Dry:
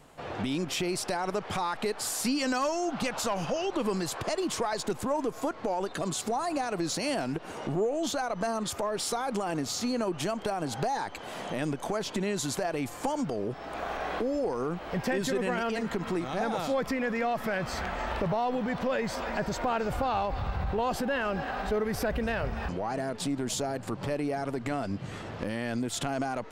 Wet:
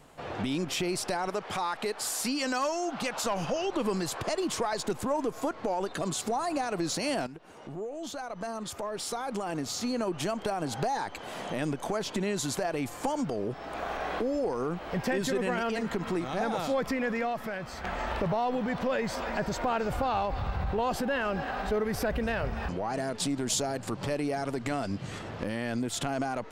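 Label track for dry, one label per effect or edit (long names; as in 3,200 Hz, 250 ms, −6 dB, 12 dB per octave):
1.280000	3.260000	low-shelf EQ 200 Hz −8.5 dB
7.270000	10.360000	fade in, from −13.5 dB
17.130000	17.840000	fade out quadratic, to −7 dB
22.930000	25.190000	parametric band 6,500 Hz +5 dB 2.2 octaves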